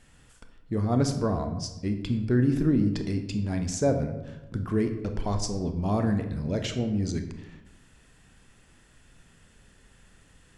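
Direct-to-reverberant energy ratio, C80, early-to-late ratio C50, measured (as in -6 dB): 6.0 dB, 11.0 dB, 8.5 dB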